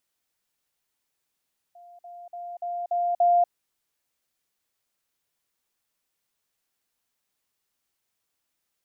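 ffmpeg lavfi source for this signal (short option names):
-f lavfi -i "aevalsrc='pow(10,(-46+6*floor(t/0.29))/20)*sin(2*PI*700*t)*clip(min(mod(t,0.29),0.24-mod(t,0.29))/0.005,0,1)':d=1.74:s=44100"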